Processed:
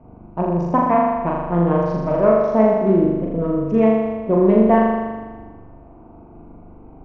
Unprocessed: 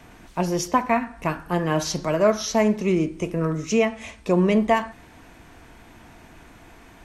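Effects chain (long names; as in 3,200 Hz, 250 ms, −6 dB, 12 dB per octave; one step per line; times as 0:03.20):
adaptive Wiener filter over 25 samples
low-pass filter 1,200 Hz 12 dB per octave
on a send: flutter between parallel walls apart 7 metres, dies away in 1.4 s
on the sum: level +2.5 dB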